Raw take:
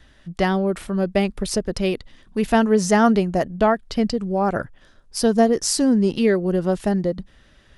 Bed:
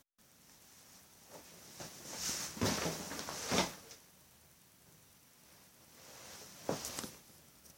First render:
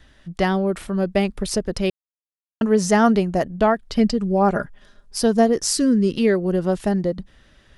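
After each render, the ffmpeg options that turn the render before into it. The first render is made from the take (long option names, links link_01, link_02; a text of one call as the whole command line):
ffmpeg -i in.wav -filter_complex "[0:a]asettb=1/sr,asplit=3[link_01][link_02][link_03];[link_01]atrim=end=3.954[link_04];[link_02]atrim=start=3.95:end=5.17,asetpts=PTS-STARTPTS,afade=type=in:duration=0.004:curve=qsin,afade=type=out:start_time=1.216:duration=0.004:curve=qsin,aecho=1:1:4.9:0.56,atrim=end_sample=53802[link_05];[link_03]atrim=start=5.166[link_06];[link_04][link_05]acrossfade=duration=0.004:curve1=hsin:curve2=qsin[link_07];[link_07][link_06]acrossfade=duration=0.004:curve1=qsin:curve2=hsin,asettb=1/sr,asplit=3[link_08][link_09][link_10];[link_08]atrim=end=5.744[link_11];[link_09]atrim=start=5.74:end=6.17,asetpts=PTS-STARTPTS,afade=type=in:duration=0.004:curve=qsin,afade=type=out:start_time=0.426:duration=0.004:curve=qsin,asuperstop=centerf=790:order=4:qfactor=1.4[link_12];[link_10]atrim=start=6.166[link_13];[link_11][link_12]acrossfade=duration=0.004:curve1=hsin:curve2=qsin[link_14];[link_14][link_13]acrossfade=duration=0.004:curve1=qsin:curve2=hsin,asplit=3[link_15][link_16][link_17];[link_15]atrim=end=1.9,asetpts=PTS-STARTPTS,afade=type=out:start_time=1.896:duration=0.004:curve=hsin[link_18];[link_16]atrim=start=1.9:end=2.61,asetpts=PTS-STARTPTS,volume=0[link_19];[link_17]atrim=start=2.61,asetpts=PTS-STARTPTS,afade=type=in:duration=0.004:curve=hsin[link_20];[link_18][link_19][link_20]concat=n=3:v=0:a=1" out.wav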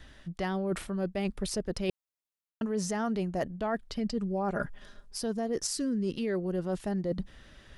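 ffmpeg -i in.wav -af "alimiter=limit=-12dB:level=0:latency=1:release=136,areverse,acompressor=threshold=-29dB:ratio=6,areverse" out.wav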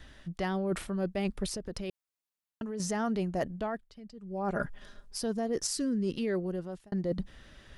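ffmpeg -i in.wav -filter_complex "[0:a]asettb=1/sr,asplit=3[link_01][link_02][link_03];[link_01]atrim=end=1.464[link_04];[link_02]atrim=start=1.46:end=2.8,asetpts=PTS-STARTPTS,afade=type=in:duration=0.004:curve=qsin,afade=type=out:start_time=1.336:duration=0.004:curve=qsin,acompressor=threshold=-33dB:ratio=6:attack=3.2:release=140:knee=1:detection=peak[link_05];[link_03]atrim=start=2.796[link_06];[link_04][link_05]acrossfade=duration=0.004:curve1=hsin:curve2=qsin[link_07];[link_07][link_06]acrossfade=duration=0.004:curve1=qsin:curve2=hsin,asplit=4[link_08][link_09][link_10][link_11];[link_08]atrim=end=3.87,asetpts=PTS-STARTPTS,afade=type=out:start_time=3.59:duration=0.28:silence=0.149624[link_12];[link_09]atrim=start=3.87:end=4.22,asetpts=PTS-STARTPTS,volume=-16.5dB[link_13];[link_10]atrim=start=4.22:end=6.92,asetpts=PTS-STARTPTS,afade=type=in:duration=0.28:silence=0.149624,afade=type=out:start_time=2.16:duration=0.54[link_14];[link_11]atrim=start=6.92,asetpts=PTS-STARTPTS,afade=type=in:duration=0.004:curve=hsin[link_15];[link_12][link_13][link_14][link_15]concat=n=4:v=0:a=1" out.wav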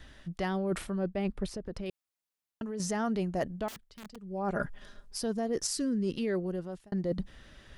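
ffmpeg -i in.wav -filter_complex "[0:a]asettb=1/sr,asplit=3[link_01][link_02][link_03];[link_01]atrim=end=0.984[link_04];[link_02]atrim=start=0.98:end=1.86,asetpts=PTS-STARTPTS,afade=type=in:duration=0.004:curve=qsin,afade=type=out:start_time=0.876:duration=0.004:curve=qsin,highshelf=frequency=3600:gain=-11.5[link_05];[link_03]atrim=start=1.856[link_06];[link_04][link_05]acrossfade=duration=0.004:curve1=hsin:curve2=qsin[link_07];[link_07][link_06]acrossfade=duration=0.004:curve1=qsin:curve2=hsin,asettb=1/sr,asplit=3[link_08][link_09][link_10];[link_08]atrim=end=3.684[link_11];[link_09]atrim=start=3.68:end=4.16,asetpts=PTS-STARTPTS,afade=type=in:duration=0.004:curve=qsin,afade=type=out:start_time=0.476:duration=0.004:curve=qsin,aeval=exprs='(mod(112*val(0)+1,2)-1)/112':channel_layout=same[link_12];[link_10]atrim=start=4.156[link_13];[link_11][link_12]acrossfade=duration=0.004:curve1=hsin:curve2=qsin[link_14];[link_14][link_13]acrossfade=duration=0.004:curve1=qsin:curve2=hsin" out.wav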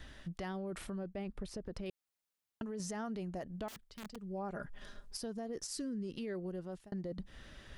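ffmpeg -i in.wav -af "alimiter=level_in=3.5dB:limit=-24dB:level=0:latency=1:release=166,volume=-3.5dB,acompressor=threshold=-42dB:ratio=2" out.wav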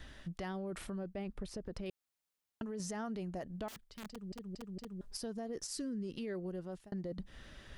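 ffmpeg -i in.wav -filter_complex "[0:a]asplit=5[link_01][link_02][link_03][link_04][link_05];[link_01]atrim=end=4.322[link_06];[link_02]atrim=start=4.088:end=4.322[link_07];[link_03]atrim=start=4.088:end=4.322[link_08];[link_04]atrim=start=4.088:end=4.322[link_09];[link_05]atrim=start=5.008[link_10];[link_06][link_07]acrossfade=duration=0.004:curve1=hsin:curve2=hsin[link_11];[link_11][link_08]acrossfade=duration=0.004:curve1=hsin:curve2=hsin[link_12];[link_12][link_09]acrossfade=duration=0.004:curve1=hsin:curve2=hsin[link_13];[link_13][link_10]acrossfade=duration=0.004:curve1=hsin:curve2=hsin" out.wav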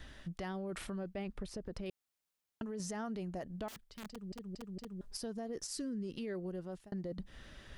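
ffmpeg -i in.wav -filter_complex "[0:a]asettb=1/sr,asplit=3[link_01][link_02][link_03];[link_01]atrim=end=0.694[link_04];[link_02]atrim=start=0.69:end=1.43,asetpts=PTS-STARTPTS,afade=type=in:duration=0.004:curve=qsin,afade=type=out:start_time=0.736:duration=0.004:curve=qsin,equalizer=frequency=2700:width=0.41:gain=3.5[link_05];[link_03]atrim=start=1.426[link_06];[link_04][link_05]acrossfade=duration=0.004:curve1=hsin:curve2=qsin[link_07];[link_07][link_06]acrossfade=duration=0.004:curve1=qsin:curve2=hsin" out.wav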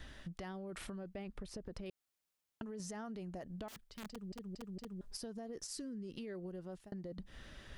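ffmpeg -i in.wav -af "acompressor=threshold=-42dB:ratio=6" out.wav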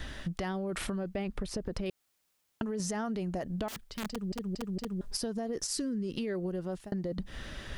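ffmpeg -i in.wav -af "volume=11dB" out.wav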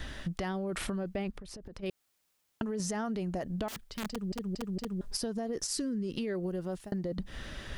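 ffmpeg -i in.wav -filter_complex "[0:a]asplit=3[link_01][link_02][link_03];[link_01]afade=type=out:start_time=1.3:duration=0.02[link_04];[link_02]acompressor=threshold=-42dB:ratio=10:attack=3.2:release=140:knee=1:detection=peak,afade=type=in:start_time=1.3:duration=0.02,afade=type=out:start_time=1.82:duration=0.02[link_05];[link_03]afade=type=in:start_time=1.82:duration=0.02[link_06];[link_04][link_05][link_06]amix=inputs=3:normalize=0,asettb=1/sr,asplit=3[link_07][link_08][link_09];[link_07]atrim=end=6.434[link_10];[link_08]atrim=start=6.43:end=6.98,asetpts=PTS-STARTPTS,afade=type=in:duration=0.004:curve=qsin,afade=type=out:start_time=0.546:duration=0.004:curve=qsin,highshelf=frequency=8300:gain=5[link_11];[link_09]atrim=start=6.976[link_12];[link_10][link_11]acrossfade=duration=0.004:curve1=hsin:curve2=qsin[link_13];[link_13][link_12]acrossfade=duration=0.004:curve1=qsin:curve2=hsin" out.wav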